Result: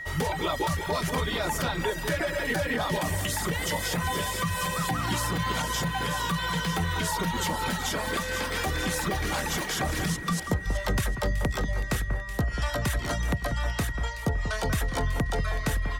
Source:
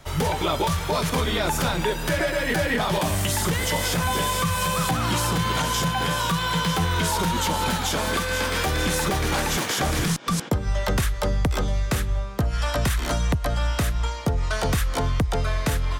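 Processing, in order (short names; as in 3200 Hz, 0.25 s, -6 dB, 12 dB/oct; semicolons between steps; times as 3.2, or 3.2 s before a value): whine 1900 Hz -31 dBFS; reverb removal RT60 0.84 s; echo with dull and thin repeats by turns 0.188 s, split 2000 Hz, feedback 64%, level -8.5 dB; gain -4 dB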